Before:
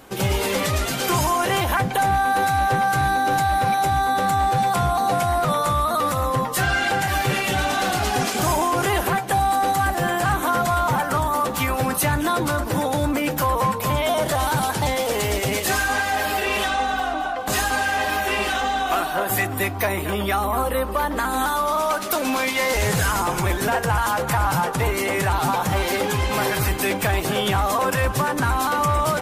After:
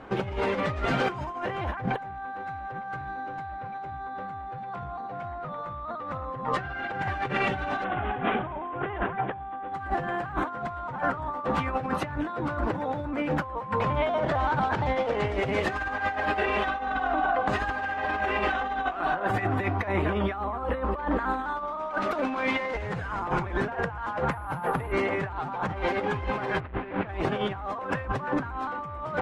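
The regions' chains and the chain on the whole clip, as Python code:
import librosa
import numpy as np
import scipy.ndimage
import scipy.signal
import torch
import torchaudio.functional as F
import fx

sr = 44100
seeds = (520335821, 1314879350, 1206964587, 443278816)

y = fx.chain(x, sr, fx.air_absorb(metres=54.0),
    fx.env_flatten(amount_pct=50), at=(3.44, 6.9))
y = fx.chain(y, sr, fx.lowpass(hz=3600.0, slope=12),
    fx.resample_bad(factor=6, down='none', up='filtered'), at=(7.84, 9.74))
y = fx.chain(y, sr, fx.lowpass(hz=7300.0, slope=12),
    fx.over_compress(threshold_db=-24.0, ratio=-0.5), at=(13.8, 15.28))
y = fx.chain(y, sr, fx.air_absorb(metres=85.0),
    fx.resample_bad(factor=4, down='filtered', up='zero_stuff'), at=(24.31, 24.92))
y = fx.chain(y, sr, fx.halfwave_hold(),
    fx.lowpass(hz=3200.0, slope=24),
    fx.hum_notches(base_hz=50, count=4), at=(26.6, 27.08))
y = scipy.signal.sosfilt(scipy.signal.butter(2, 2000.0, 'lowpass', fs=sr, output='sos'), y)
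y = fx.peak_eq(y, sr, hz=1300.0, db=2.0, octaves=1.5)
y = fx.over_compress(y, sr, threshold_db=-25.0, ratio=-0.5)
y = y * librosa.db_to_amplitude(-3.5)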